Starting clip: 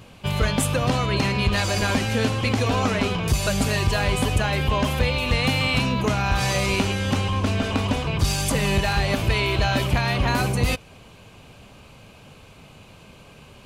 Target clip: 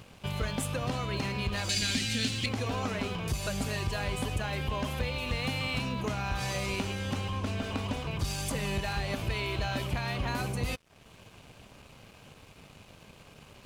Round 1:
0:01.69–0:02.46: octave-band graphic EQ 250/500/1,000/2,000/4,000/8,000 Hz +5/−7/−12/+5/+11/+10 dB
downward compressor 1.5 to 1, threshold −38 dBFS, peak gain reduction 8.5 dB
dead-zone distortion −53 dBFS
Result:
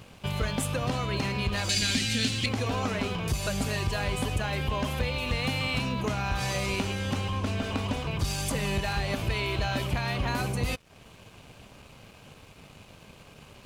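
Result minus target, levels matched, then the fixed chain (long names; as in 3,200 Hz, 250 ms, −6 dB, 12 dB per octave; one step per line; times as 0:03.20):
downward compressor: peak gain reduction −3 dB
0:01.69–0:02.46: octave-band graphic EQ 250/500/1,000/2,000/4,000/8,000 Hz +5/−7/−12/+5/+11/+10 dB
downward compressor 1.5 to 1, threshold −47 dBFS, peak gain reduction 11.5 dB
dead-zone distortion −53 dBFS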